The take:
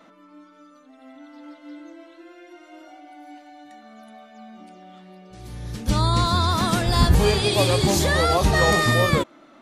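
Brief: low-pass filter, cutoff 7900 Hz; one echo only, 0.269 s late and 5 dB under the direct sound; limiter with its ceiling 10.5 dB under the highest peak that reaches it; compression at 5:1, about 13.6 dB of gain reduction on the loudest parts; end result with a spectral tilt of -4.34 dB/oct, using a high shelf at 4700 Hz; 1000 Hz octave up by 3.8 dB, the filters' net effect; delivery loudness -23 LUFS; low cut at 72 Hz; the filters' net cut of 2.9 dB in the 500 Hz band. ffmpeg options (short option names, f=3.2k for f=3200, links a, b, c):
-af "highpass=72,lowpass=7.9k,equalizer=f=500:t=o:g=-5.5,equalizer=f=1k:t=o:g=6.5,highshelf=f=4.7k:g=-8,acompressor=threshold=-29dB:ratio=5,alimiter=level_in=4.5dB:limit=-24dB:level=0:latency=1,volume=-4.5dB,aecho=1:1:269:0.562,volume=15.5dB"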